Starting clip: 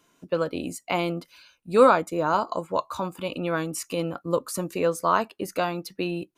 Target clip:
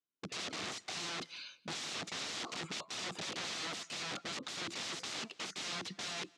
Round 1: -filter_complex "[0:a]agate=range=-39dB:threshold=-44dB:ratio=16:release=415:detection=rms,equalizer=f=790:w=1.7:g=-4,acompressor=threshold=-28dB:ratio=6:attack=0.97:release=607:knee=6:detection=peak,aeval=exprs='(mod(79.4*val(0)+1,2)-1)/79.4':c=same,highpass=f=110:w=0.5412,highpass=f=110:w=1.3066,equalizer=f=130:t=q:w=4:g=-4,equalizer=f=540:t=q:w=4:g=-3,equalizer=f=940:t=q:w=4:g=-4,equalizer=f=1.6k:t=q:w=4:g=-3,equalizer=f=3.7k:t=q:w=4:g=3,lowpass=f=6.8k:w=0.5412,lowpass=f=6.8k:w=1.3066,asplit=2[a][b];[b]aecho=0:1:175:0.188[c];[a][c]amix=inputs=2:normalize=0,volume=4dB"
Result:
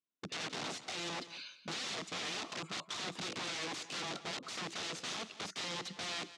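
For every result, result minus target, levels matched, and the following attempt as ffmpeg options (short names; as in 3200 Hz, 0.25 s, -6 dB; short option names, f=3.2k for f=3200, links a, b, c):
echo-to-direct +10 dB; compressor: peak gain reduction +6 dB
-filter_complex "[0:a]agate=range=-39dB:threshold=-44dB:ratio=16:release=415:detection=rms,equalizer=f=790:w=1.7:g=-4,acompressor=threshold=-28dB:ratio=6:attack=0.97:release=607:knee=6:detection=peak,aeval=exprs='(mod(79.4*val(0)+1,2)-1)/79.4':c=same,highpass=f=110:w=0.5412,highpass=f=110:w=1.3066,equalizer=f=130:t=q:w=4:g=-4,equalizer=f=540:t=q:w=4:g=-3,equalizer=f=940:t=q:w=4:g=-4,equalizer=f=1.6k:t=q:w=4:g=-3,equalizer=f=3.7k:t=q:w=4:g=3,lowpass=f=6.8k:w=0.5412,lowpass=f=6.8k:w=1.3066,asplit=2[a][b];[b]aecho=0:1:175:0.0596[c];[a][c]amix=inputs=2:normalize=0,volume=4dB"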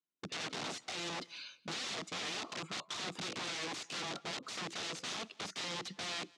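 compressor: peak gain reduction +6 dB
-filter_complex "[0:a]agate=range=-39dB:threshold=-44dB:ratio=16:release=415:detection=rms,equalizer=f=790:w=1.7:g=-4,acompressor=threshold=-21dB:ratio=6:attack=0.97:release=607:knee=6:detection=peak,aeval=exprs='(mod(79.4*val(0)+1,2)-1)/79.4':c=same,highpass=f=110:w=0.5412,highpass=f=110:w=1.3066,equalizer=f=130:t=q:w=4:g=-4,equalizer=f=540:t=q:w=4:g=-3,equalizer=f=940:t=q:w=4:g=-4,equalizer=f=1.6k:t=q:w=4:g=-3,equalizer=f=3.7k:t=q:w=4:g=3,lowpass=f=6.8k:w=0.5412,lowpass=f=6.8k:w=1.3066,asplit=2[a][b];[b]aecho=0:1:175:0.0596[c];[a][c]amix=inputs=2:normalize=0,volume=4dB"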